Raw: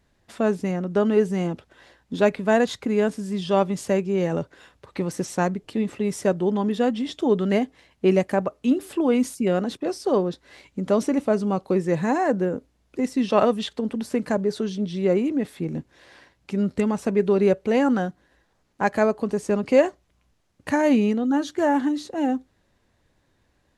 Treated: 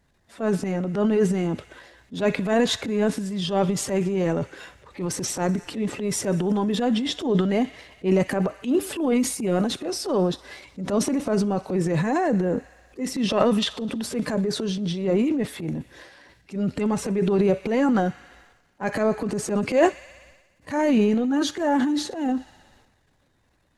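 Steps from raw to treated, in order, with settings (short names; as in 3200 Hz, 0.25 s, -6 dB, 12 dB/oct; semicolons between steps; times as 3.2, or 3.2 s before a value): bin magnitudes rounded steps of 15 dB; thin delay 62 ms, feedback 81%, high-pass 1700 Hz, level -21 dB; transient shaper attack -8 dB, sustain +9 dB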